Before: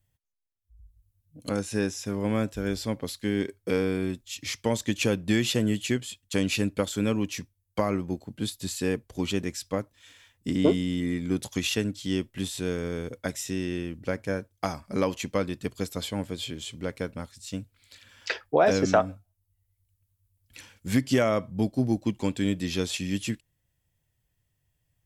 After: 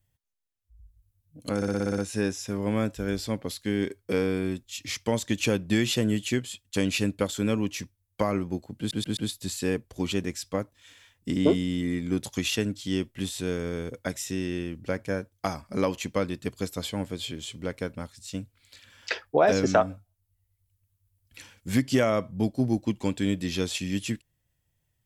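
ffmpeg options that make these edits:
-filter_complex "[0:a]asplit=11[a][b][c][d][e][f][g][h][i][j][k];[a]atrim=end=1.622[l];[b]atrim=start=1.558:end=1.622[m];[c]atrim=start=1.558:end=1.622[n];[d]atrim=start=1.558:end=1.622[o];[e]atrim=start=1.558:end=1.622[p];[f]atrim=start=1.558:end=1.622[q];[g]atrim=start=1.558:end=1.622[r];[h]atrim=start=1.558:end=8.492[s];[i]atrim=start=8.358:end=8.492[t];[j]atrim=start=8.358:end=8.492[u];[k]atrim=start=8.358[v];[l][m]acrossfade=d=0.004:c1=hsin:c2=hsin[w];[w][n]acrossfade=d=0.004:c1=hsin:c2=hsin[x];[x][o]acrossfade=d=0.004:c1=hsin:c2=hsin[y];[y][p]acrossfade=d=0.004:c1=hsin:c2=hsin[z];[z][q]acrossfade=d=0.004:c1=hsin:c2=hsin[aa];[aa][r]acrossfade=d=0.004:c1=hsin:c2=hsin[ab];[ab][s]acrossfade=d=0.004:c1=hsin:c2=hsin[ac];[ac][t]acrossfade=d=0.004:c1=hsin:c2=hsin[ad];[ad][u]acrossfade=d=0.004:c1=hsin:c2=hsin[ae];[ae][v]acrossfade=d=0.004:c1=hsin:c2=hsin"

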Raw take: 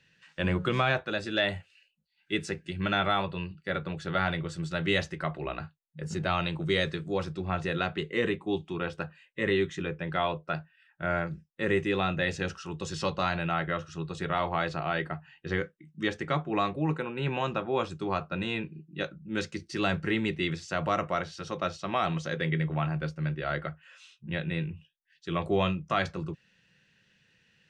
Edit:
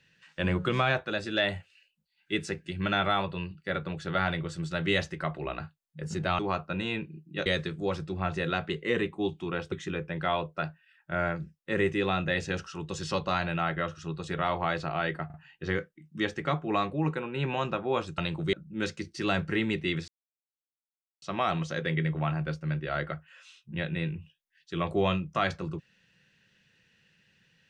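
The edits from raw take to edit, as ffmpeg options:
-filter_complex "[0:a]asplit=10[a][b][c][d][e][f][g][h][i][j];[a]atrim=end=6.392[k];[b]atrim=start=18.008:end=19.082[l];[c]atrim=start=6.738:end=9.002[m];[d]atrim=start=9.628:end=15.212[n];[e]atrim=start=15.168:end=15.212[o];[f]atrim=start=15.168:end=18.012[p];[g]atrim=start=6.388:end=6.742[q];[h]atrim=start=19.078:end=20.63,asetpts=PTS-STARTPTS,afade=t=out:st=1.548:d=0.004:c=hsin[r];[i]atrim=start=20.63:end=21.77,asetpts=PTS-STARTPTS,volume=0[s];[j]atrim=start=21.77,asetpts=PTS-STARTPTS,afade=t=in:d=0.004:c=hsin[t];[k][l]acrossfade=d=0.004:c1=hsin:c2=hsin[u];[u][m]acrossfade=d=0.004:c1=hsin:c2=hsin[v];[v][n]acrossfade=d=0.004:c1=hsin:c2=hsin[w];[w][o]acrossfade=d=0.004:c1=hsin:c2=hsin[x];[x][p]acrossfade=d=0.004:c1=hsin:c2=hsin[y];[y][q]acrossfade=d=0.004:c1=hsin:c2=hsin[z];[r][s][t]concat=n=3:v=0:a=1[aa];[z][aa]acrossfade=d=0.004:c1=hsin:c2=hsin"

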